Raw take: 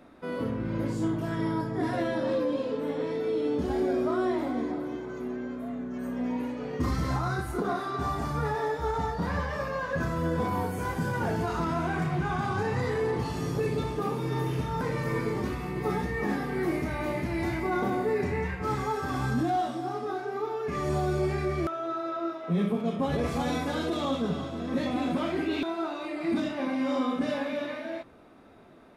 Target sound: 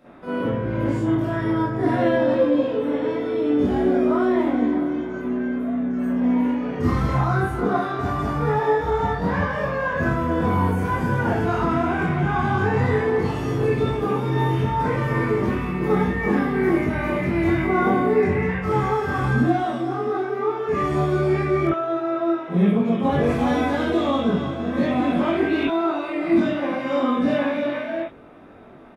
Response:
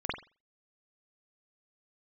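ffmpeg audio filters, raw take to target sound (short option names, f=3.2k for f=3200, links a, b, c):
-filter_complex "[0:a]asplit=2[a][b];[b]adelay=21,volume=-3.5dB[c];[a][c]amix=inputs=2:normalize=0[d];[1:a]atrim=start_sample=2205,atrim=end_sample=3087[e];[d][e]afir=irnorm=-1:irlink=0"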